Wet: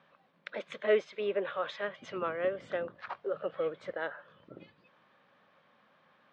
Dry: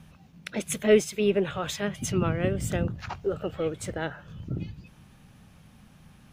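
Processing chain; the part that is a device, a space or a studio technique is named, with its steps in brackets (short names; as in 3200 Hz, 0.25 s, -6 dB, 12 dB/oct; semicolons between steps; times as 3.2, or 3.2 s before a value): phone earpiece (speaker cabinet 490–3600 Hz, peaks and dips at 550 Hz +8 dB, 800 Hz -3 dB, 1100 Hz +6 dB, 1700 Hz +3 dB, 2700 Hz -6 dB); 3.34–3.92 bell 160 Hz +8 dB; gain -4.5 dB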